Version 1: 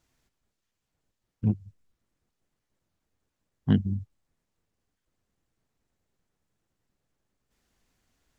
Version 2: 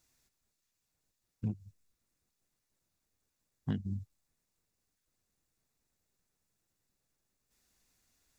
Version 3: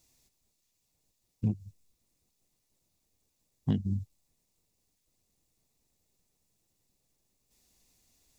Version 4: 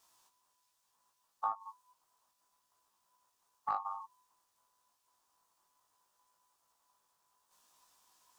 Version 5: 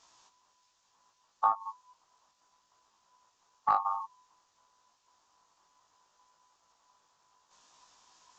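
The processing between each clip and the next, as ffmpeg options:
ffmpeg -i in.wav -af "highshelf=frequency=3300:gain=12,bandreject=frequency=3100:width=10,acompressor=threshold=-24dB:ratio=6,volume=-6dB" out.wav
ffmpeg -i in.wav -af "equalizer=frequency=1500:width=2:gain=-12,volume=6dB" out.wav
ffmpeg -i in.wav -af "aeval=exprs='val(0)*sin(2*PI*1000*n/s)':channel_layout=same,acompressor=threshold=-36dB:ratio=4,flanger=delay=18:depth=2.4:speed=0.63,volume=5.5dB" out.wav
ffmpeg -i in.wav -af "aresample=16000,aresample=44100,volume=8.5dB" out.wav

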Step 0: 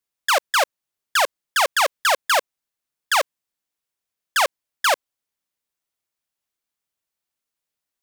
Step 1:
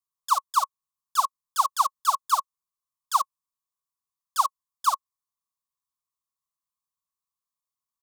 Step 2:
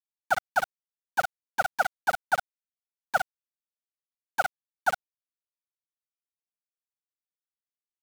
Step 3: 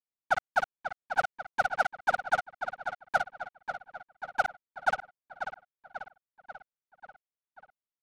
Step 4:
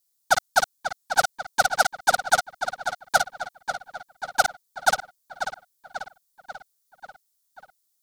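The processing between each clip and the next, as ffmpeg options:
ffmpeg -i in.wav -af "firequalizer=gain_entry='entry(170,0);entry(430,-30);entry(1100,14);entry(1700,-29);entry(3600,-4);entry(6600,1)':delay=0.05:min_phase=1,volume=-7.5dB" out.wav
ffmpeg -i in.wav -af "afwtdn=0.0282,aeval=exprs='val(0)*sin(2*PI*350*n/s)':channel_layout=same,aeval=exprs='val(0)*gte(abs(val(0)),0.0355)':channel_layout=same" out.wav
ffmpeg -i in.wav -filter_complex "[0:a]acrossover=split=4900[link_01][link_02];[link_02]acrusher=bits=5:dc=4:mix=0:aa=0.000001[link_03];[link_01][link_03]amix=inputs=2:normalize=0,aecho=1:1:540|1080|1620|2160|2700|3240|3780:0.355|0.213|0.128|0.0766|0.046|0.0276|0.0166,adynamicsmooth=sensitivity=4:basefreq=2000,volume=-1.5dB" out.wav
ffmpeg -i in.wav -af "aexciter=amount=4.4:drive=7.2:freq=3700,volume=6.5dB" out.wav

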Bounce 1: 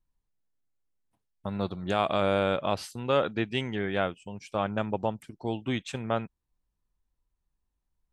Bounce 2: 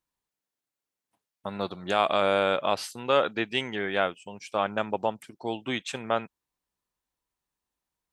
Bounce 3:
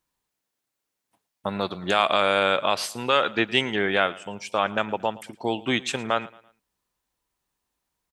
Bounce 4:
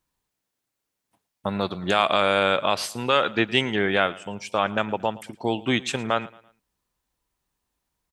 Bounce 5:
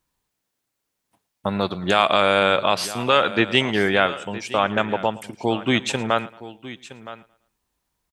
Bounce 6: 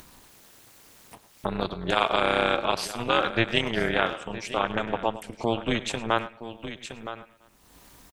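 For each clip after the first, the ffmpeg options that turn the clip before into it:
ffmpeg -i in.wav -af "highpass=frequency=500:poles=1,volume=4.5dB" out.wav
ffmpeg -i in.wav -filter_complex "[0:a]acrossover=split=1100[link_01][link_02];[link_01]alimiter=limit=-22dB:level=0:latency=1:release=252[link_03];[link_03][link_02]amix=inputs=2:normalize=0,aecho=1:1:112|224|336:0.0944|0.0368|0.0144,volume=6.5dB" out.wav
ffmpeg -i in.wav -af "lowshelf=frequency=200:gain=6" out.wav
ffmpeg -i in.wav -af "aecho=1:1:966:0.158,volume=3dB" out.wav
ffmpeg -i in.wav -filter_complex "[0:a]asplit=2[link_01][link_02];[link_02]adelay=100,highpass=300,lowpass=3400,asoftclip=type=hard:threshold=-10dB,volume=-15dB[link_03];[link_01][link_03]amix=inputs=2:normalize=0,acompressor=mode=upward:threshold=-22dB:ratio=2.5,tremolo=f=230:d=0.919,volume=-2dB" out.wav

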